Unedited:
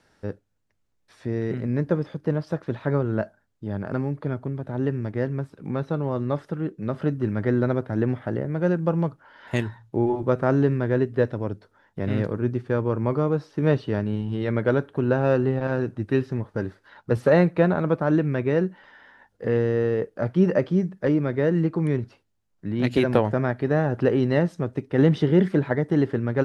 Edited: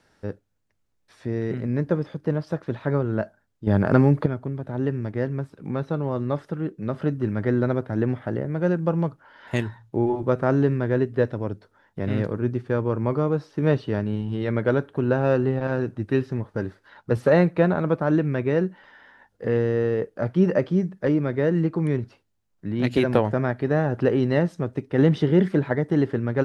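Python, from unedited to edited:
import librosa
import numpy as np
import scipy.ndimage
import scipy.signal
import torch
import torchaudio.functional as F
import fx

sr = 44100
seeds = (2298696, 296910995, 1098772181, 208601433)

y = fx.edit(x, sr, fx.clip_gain(start_s=3.67, length_s=0.59, db=10.0), tone=tone)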